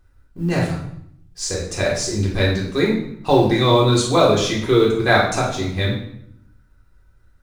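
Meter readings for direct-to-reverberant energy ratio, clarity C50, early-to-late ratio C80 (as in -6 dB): -6.0 dB, 4.0 dB, 7.5 dB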